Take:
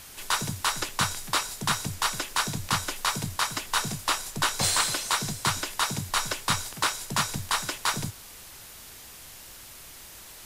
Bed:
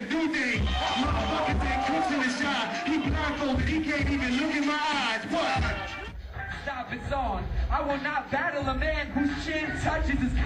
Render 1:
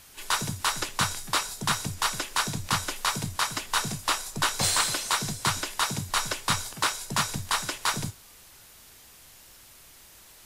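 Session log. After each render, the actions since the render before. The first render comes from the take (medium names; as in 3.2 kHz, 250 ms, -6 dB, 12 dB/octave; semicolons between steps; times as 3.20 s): noise print and reduce 6 dB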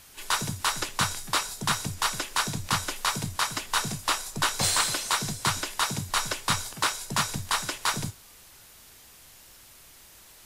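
no audible change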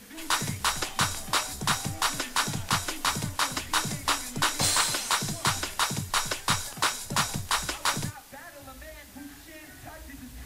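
add bed -17.5 dB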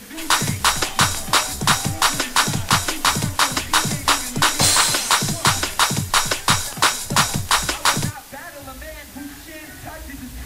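trim +9.5 dB; peak limiter -2 dBFS, peak gain reduction 2 dB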